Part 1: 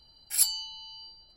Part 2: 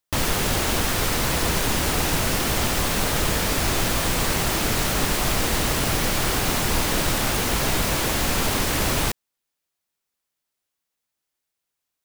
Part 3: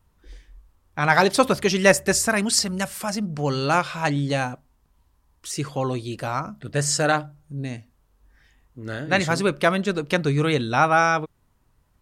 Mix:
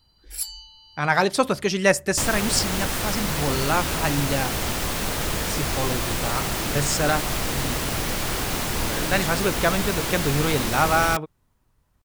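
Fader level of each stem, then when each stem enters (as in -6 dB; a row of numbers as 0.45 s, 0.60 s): -6.0 dB, -3.5 dB, -2.5 dB; 0.00 s, 2.05 s, 0.00 s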